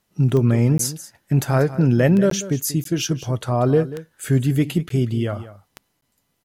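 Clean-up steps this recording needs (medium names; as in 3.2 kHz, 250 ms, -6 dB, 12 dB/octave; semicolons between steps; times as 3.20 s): de-click; interpolate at 0.78/2.30/2.84/4.89/6.01 s, 13 ms; inverse comb 188 ms -15 dB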